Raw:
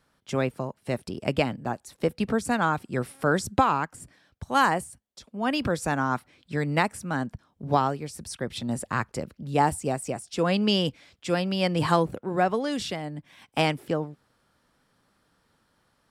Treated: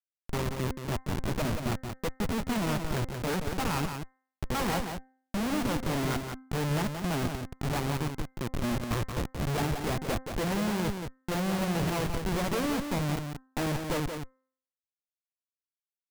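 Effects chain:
variable-slope delta modulation 16 kbit/s
in parallel at 0 dB: brickwall limiter −20.5 dBFS, peak gain reduction 8 dB
on the sum: rotating-speaker cabinet horn 5 Hz
comparator with hysteresis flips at −29.5 dBFS
hum removal 260.8 Hz, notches 8
on a send: single-tap delay 177 ms −6.5 dB
on the sum: level −1.5 dB

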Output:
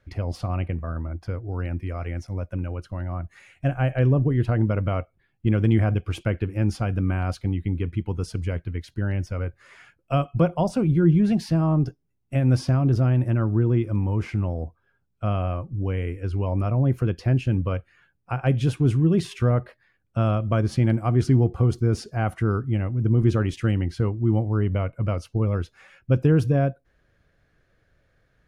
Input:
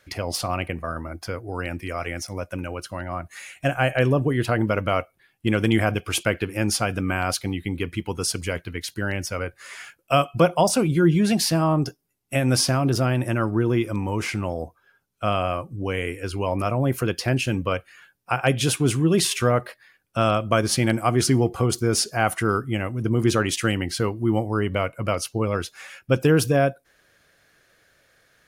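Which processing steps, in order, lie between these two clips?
RIAA equalisation playback
level −7.5 dB

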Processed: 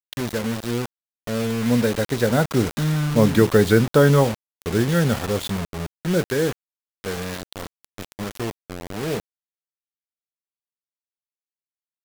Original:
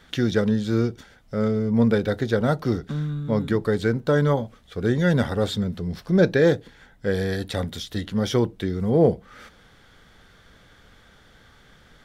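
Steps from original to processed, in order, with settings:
source passing by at 0:03.45, 16 m/s, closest 13 metres
bit reduction 6 bits
level +7 dB

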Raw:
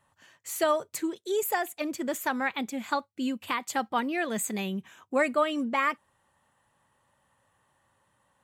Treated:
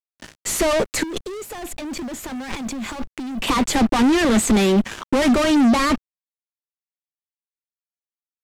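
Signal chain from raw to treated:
Chebyshev high-pass filter 220 Hz, order 5
high-shelf EQ 3,500 Hz −2.5 dB
fuzz pedal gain 47 dB, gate −54 dBFS
0:01.03–0:03.44: compressor whose output falls as the input rises −27 dBFS, ratio −1
low-pass filter 9,800 Hz 12 dB per octave
bit reduction 8 bits
low-shelf EQ 330 Hz +11.5 dB
level −6.5 dB

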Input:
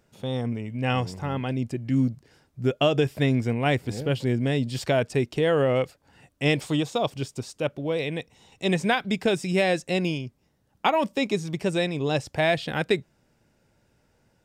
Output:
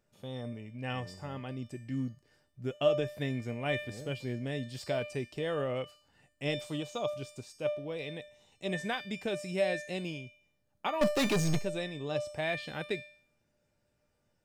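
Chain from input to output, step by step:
0:11.01–0:11.59: leveller curve on the samples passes 5
tuned comb filter 600 Hz, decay 0.56 s, mix 90%
level +7 dB

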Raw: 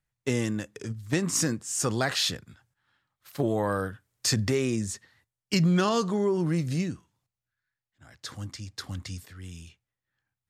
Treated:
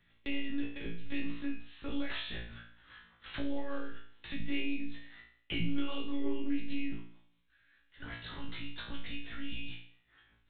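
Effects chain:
high-shelf EQ 2,000 Hz +11.5 dB
brickwall limiter −13 dBFS, peak gain reduction 9.5 dB
downward compressor 2.5 to 1, threshold −42 dBFS, peak gain reduction 14.5 dB
rotating-speaker cabinet horn 5 Hz
one-pitch LPC vocoder at 8 kHz 280 Hz
on a send: flutter between parallel walls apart 3 metres, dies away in 0.48 s
on the sum: multiband upward and downward compressor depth 40%
level +2 dB

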